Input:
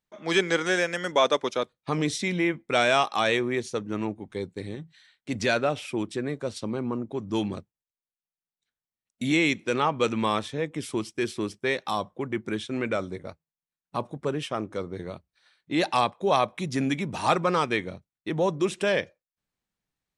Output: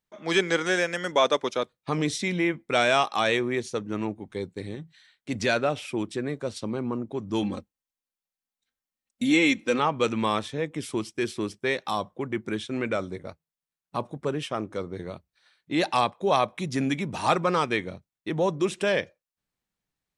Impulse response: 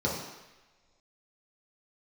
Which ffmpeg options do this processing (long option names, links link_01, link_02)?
-filter_complex "[0:a]asettb=1/sr,asplit=3[link_01][link_02][link_03];[link_01]atrim=end=7.424[link_04];[link_02]atrim=start=7.42:end=9.79,asetpts=PTS-STARTPTS,afade=type=in:duration=0.004:curve=qsin,afade=type=out:start_time=2.366:duration=0.004:curve=qsin,aecho=1:1:3.8:0.66,atrim=end_sample=104517[link_05];[link_03]atrim=start=9.786[link_06];[link_04][link_05]acrossfade=duration=0.004:curve1=hsin:curve2=qsin[link_07];[link_07][link_06]acrossfade=duration=0.004:curve1=qsin:curve2=hsin"